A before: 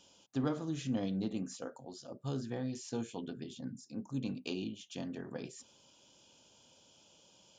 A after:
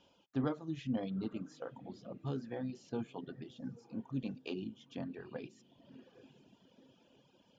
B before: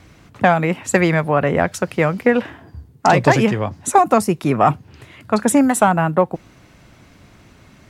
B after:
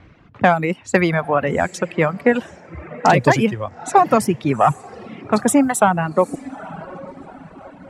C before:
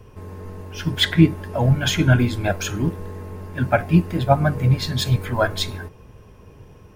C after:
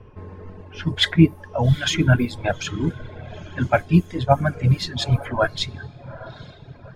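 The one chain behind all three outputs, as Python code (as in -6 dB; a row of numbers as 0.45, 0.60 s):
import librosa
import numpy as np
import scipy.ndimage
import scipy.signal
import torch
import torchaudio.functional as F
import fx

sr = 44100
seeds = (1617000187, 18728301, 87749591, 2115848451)

y = fx.echo_diffused(x, sr, ms=845, feedback_pct=44, wet_db=-13.5)
y = fx.env_lowpass(y, sr, base_hz=2600.0, full_db=-12.0)
y = fx.dereverb_blind(y, sr, rt60_s=1.5)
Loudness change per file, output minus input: -2.0, -1.0, -1.0 LU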